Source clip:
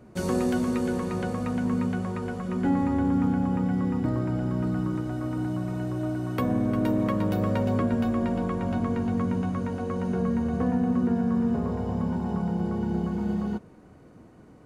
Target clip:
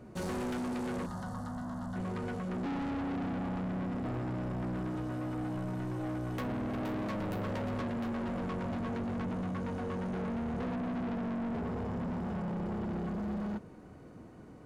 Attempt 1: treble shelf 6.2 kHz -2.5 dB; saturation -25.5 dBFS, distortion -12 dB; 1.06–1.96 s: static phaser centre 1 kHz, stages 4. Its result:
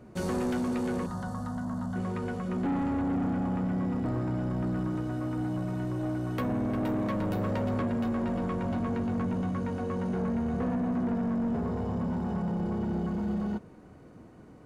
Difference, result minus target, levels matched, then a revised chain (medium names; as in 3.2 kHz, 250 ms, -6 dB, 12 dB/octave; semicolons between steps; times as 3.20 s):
saturation: distortion -5 dB
treble shelf 6.2 kHz -2.5 dB; saturation -33.5 dBFS, distortion -6 dB; 1.06–1.96 s: static phaser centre 1 kHz, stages 4